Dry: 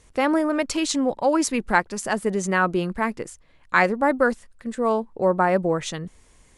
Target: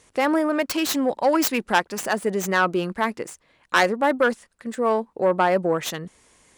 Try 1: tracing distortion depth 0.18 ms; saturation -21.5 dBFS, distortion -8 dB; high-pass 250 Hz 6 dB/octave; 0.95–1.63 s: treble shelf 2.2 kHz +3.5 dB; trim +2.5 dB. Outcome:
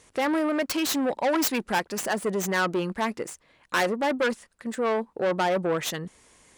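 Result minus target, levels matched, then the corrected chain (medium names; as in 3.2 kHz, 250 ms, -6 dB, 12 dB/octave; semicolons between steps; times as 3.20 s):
saturation: distortion +9 dB
tracing distortion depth 0.18 ms; saturation -11 dBFS, distortion -17 dB; high-pass 250 Hz 6 dB/octave; 0.95–1.63 s: treble shelf 2.2 kHz +3.5 dB; trim +2.5 dB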